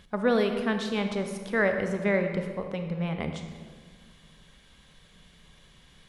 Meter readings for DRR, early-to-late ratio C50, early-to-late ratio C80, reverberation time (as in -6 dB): 5.5 dB, 6.5 dB, 8.0 dB, 1.7 s